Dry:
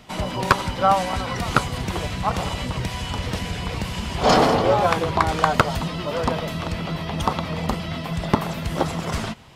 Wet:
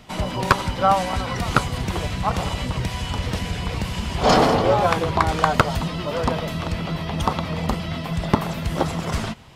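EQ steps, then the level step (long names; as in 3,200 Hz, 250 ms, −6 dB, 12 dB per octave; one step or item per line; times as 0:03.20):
low-shelf EQ 120 Hz +3.5 dB
0.0 dB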